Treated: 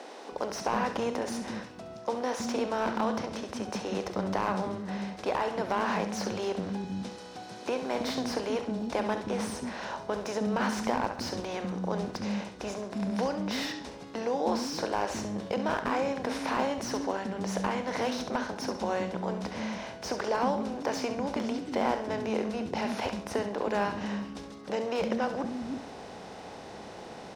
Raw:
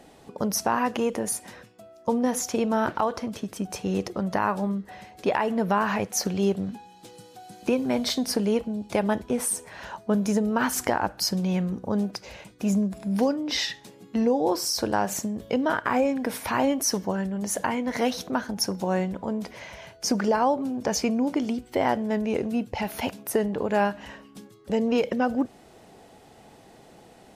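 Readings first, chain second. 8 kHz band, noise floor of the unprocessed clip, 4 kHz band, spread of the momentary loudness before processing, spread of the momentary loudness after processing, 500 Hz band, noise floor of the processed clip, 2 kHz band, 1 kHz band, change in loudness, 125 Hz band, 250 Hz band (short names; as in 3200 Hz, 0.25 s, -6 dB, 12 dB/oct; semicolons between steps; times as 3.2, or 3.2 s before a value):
-11.5 dB, -52 dBFS, -6.0 dB, 9 LU, 8 LU, -4.0 dB, -45 dBFS, -4.0 dB, -3.5 dB, -6.0 dB, -6.0 dB, -6.5 dB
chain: per-bin compression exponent 0.6; LPF 5100 Hz 12 dB/oct; bands offset in time highs, lows 0.32 s, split 280 Hz; crackle 86/s -50 dBFS; on a send: flutter echo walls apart 11.7 m, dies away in 0.38 s; on the sum: slew limiter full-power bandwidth 200 Hz; gain -8 dB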